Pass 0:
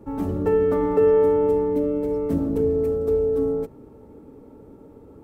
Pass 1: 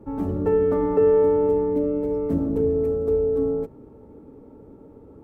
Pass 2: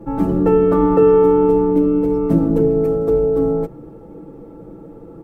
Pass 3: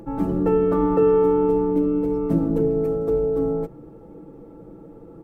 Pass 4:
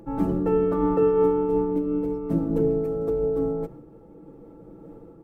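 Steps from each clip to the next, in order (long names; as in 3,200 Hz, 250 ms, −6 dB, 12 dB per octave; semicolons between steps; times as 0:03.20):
high-shelf EQ 2,200 Hz −9 dB
comb filter 6 ms, depth 85%; level +7.5 dB
upward compression, threshold −35 dBFS; level −5.5 dB
amplitude modulation by smooth noise, depth 60%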